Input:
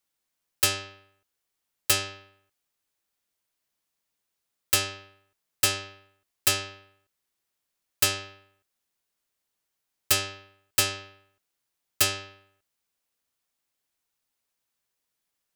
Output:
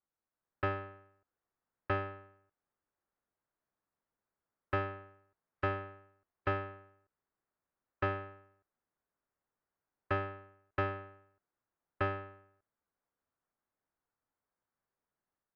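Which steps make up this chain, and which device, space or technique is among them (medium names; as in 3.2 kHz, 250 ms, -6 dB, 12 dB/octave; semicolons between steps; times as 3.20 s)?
action camera in a waterproof case (low-pass 1.6 kHz 24 dB/octave; level rider gain up to 5 dB; trim -5.5 dB; AAC 64 kbps 16 kHz)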